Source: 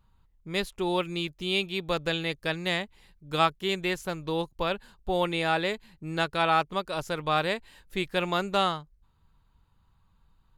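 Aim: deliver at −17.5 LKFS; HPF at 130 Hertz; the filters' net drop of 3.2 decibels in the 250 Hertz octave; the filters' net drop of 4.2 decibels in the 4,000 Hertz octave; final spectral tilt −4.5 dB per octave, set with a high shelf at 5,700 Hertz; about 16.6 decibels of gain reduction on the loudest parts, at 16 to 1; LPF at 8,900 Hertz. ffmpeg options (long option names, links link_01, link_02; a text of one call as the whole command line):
ffmpeg -i in.wav -af "highpass=130,lowpass=8900,equalizer=frequency=250:width_type=o:gain=-5,equalizer=frequency=4000:width_type=o:gain=-7.5,highshelf=frequency=5700:gain=7.5,acompressor=threshold=-35dB:ratio=16,volume=23dB" out.wav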